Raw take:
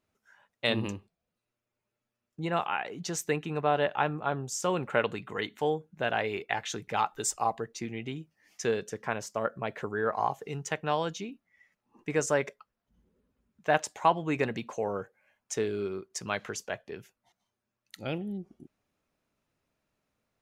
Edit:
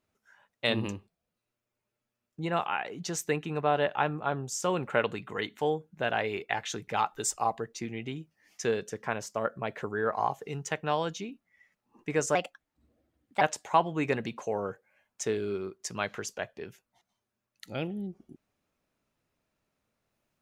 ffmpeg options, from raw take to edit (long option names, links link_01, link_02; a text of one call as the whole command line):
ffmpeg -i in.wav -filter_complex "[0:a]asplit=3[link_01][link_02][link_03];[link_01]atrim=end=12.354[link_04];[link_02]atrim=start=12.35:end=13.72,asetpts=PTS-STARTPTS,asetrate=56889,aresample=44100[link_05];[link_03]atrim=start=13.716[link_06];[link_04][link_05]acrossfade=duration=0.004:curve1=hsin:curve2=hsin[link_07];[link_07][link_06]acrossfade=duration=0.004:curve1=hsin:curve2=hsin" out.wav